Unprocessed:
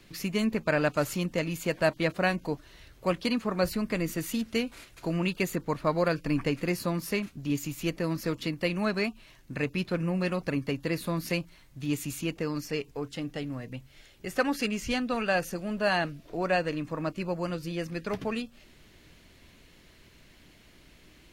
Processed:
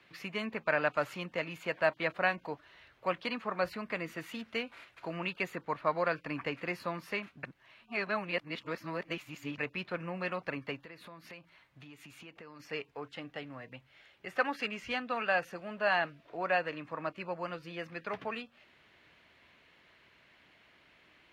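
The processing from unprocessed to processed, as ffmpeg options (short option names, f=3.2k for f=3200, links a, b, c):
-filter_complex "[0:a]asplit=3[a][b][c];[a]afade=t=out:st=10.81:d=0.02[d];[b]acompressor=threshold=-37dB:ratio=16:attack=3.2:release=140:knee=1:detection=peak,afade=t=in:st=10.81:d=0.02,afade=t=out:st=12.59:d=0.02[e];[c]afade=t=in:st=12.59:d=0.02[f];[d][e][f]amix=inputs=3:normalize=0,asplit=3[g][h][i];[g]atrim=end=7.432[j];[h]atrim=start=7.428:end=9.582,asetpts=PTS-STARTPTS,areverse[k];[i]atrim=start=9.578[l];[j][k]acrossfade=d=0.004:c1=hsin:c2=hsin[m];[m][l]acrossfade=d=0.004:c1=hsin:c2=hsin,highpass=79,acrossover=split=590 3300:gain=0.224 1 0.1[n][o][p];[n][o][p]amix=inputs=3:normalize=0"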